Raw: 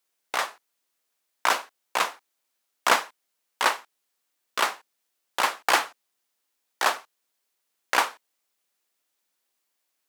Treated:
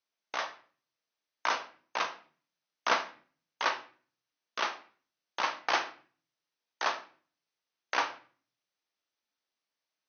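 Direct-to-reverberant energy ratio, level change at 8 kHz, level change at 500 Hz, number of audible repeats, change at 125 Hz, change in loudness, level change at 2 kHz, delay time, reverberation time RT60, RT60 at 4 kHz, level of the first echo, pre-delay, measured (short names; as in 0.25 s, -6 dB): 6.5 dB, -12.5 dB, -6.5 dB, none, n/a, -7.0 dB, -7.0 dB, none, 0.45 s, 0.35 s, none, 3 ms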